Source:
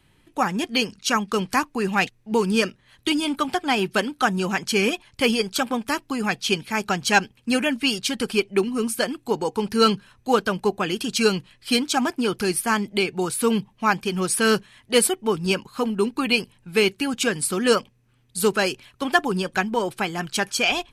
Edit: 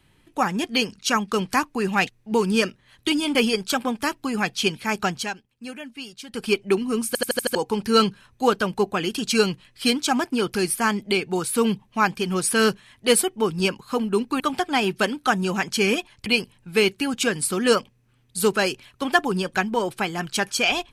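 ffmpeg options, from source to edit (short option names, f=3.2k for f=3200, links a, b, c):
-filter_complex "[0:a]asplit=12[a][b][c][d][e][f][g][h][i][j][k][l];[a]atrim=end=3.352[m];[b]atrim=start=5.208:end=7.17,asetpts=PTS-STARTPTS,afade=t=out:st=1.742:d=0.22:silence=0.188365[n];[c]atrim=start=7.17:end=8.14,asetpts=PTS-STARTPTS,volume=-14.5dB[o];[d]atrim=start=8.14:end=9.012,asetpts=PTS-STARTPTS,afade=t=in:d=0.22:silence=0.188365[p];[e]atrim=start=8.928:end=9.012[q];[f]atrim=start=8.928:end=9.012[r];[g]atrim=start=8.928:end=9.012[s];[h]atrim=start=8.928:end=9.012[t];[i]atrim=start=8.928:end=9.012[u];[j]atrim=start=9.408:end=16.262[v];[k]atrim=start=3.348:end=5.212[w];[l]atrim=start=16.258[x];[n][o][p]concat=n=3:v=0:a=1[y];[m][y]acrossfade=d=0.004:c1=hsin:c2=hsin[z];[z][q]acrossfade=d=0.004:c1=hsin:c2=hsin[aa];[aa][r]acrossfade=d=0.004:c1=hsin:c2=hsin[ab];[ab][s]acrossfade=d=0.004:c1=hsin:c2=hsin[ac];[ac][t]acrossfade=d=0.004:c1=hsin:c2=hsin[ad];[ad][u]acrossfade=d=0.004:c1=hsin:c2=hsin[ae];[ae][v]acrossfade=d=0.004:c1=hsin:c2=hsin[af];[af][w]acrossfade=d=0.004:c1=hsin:c2=hsin[ag];[ag][x]acrossfade=d=0.004:c1=hsin:c2=hsin"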